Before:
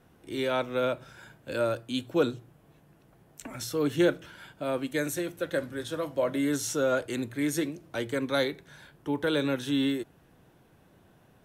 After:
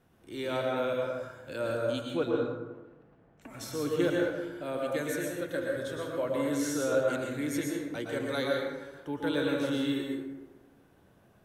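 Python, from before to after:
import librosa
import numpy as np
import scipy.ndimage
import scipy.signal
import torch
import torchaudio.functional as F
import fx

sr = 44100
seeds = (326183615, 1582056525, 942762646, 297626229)

y = fx.lowpass(x, sr, hz=fx.line((2.13, 3900.0), (3.41, 2100.0)), slope=12, at=(2.13, 3.41), fade=0.02)
y = fx.rev_plate(y, sr, seeds[0], rt60_s=1.2, hf_ratio=0.45, predelay_ms=100, drr_db=-1.5)
y = y * 10.0 ** (-6.0 / 20.0)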